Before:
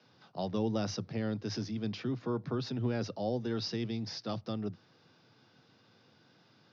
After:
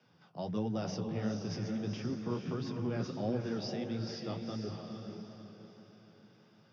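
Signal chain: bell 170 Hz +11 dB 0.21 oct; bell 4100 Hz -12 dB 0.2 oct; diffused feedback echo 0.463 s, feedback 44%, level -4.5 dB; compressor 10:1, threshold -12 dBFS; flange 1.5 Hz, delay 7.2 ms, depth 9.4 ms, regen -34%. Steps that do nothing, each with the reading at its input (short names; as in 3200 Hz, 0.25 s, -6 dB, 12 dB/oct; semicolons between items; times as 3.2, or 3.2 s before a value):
compressor, threshold -12 dBFS: input peak -19.0 dBFS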